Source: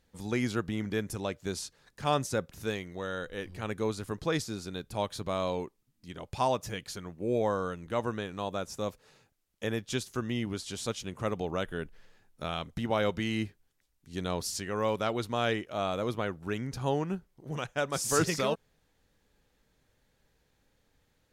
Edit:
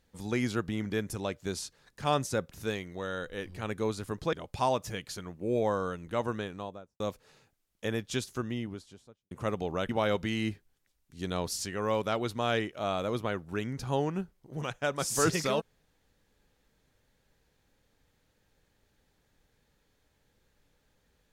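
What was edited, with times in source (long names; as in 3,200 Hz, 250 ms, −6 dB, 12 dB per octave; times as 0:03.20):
0:04.33–0:06.12: remove
0:08.18–0:08.79: fade out and dull
0:10.01–0:11.10: fade out and dull
0:11.68–0:12.83: remove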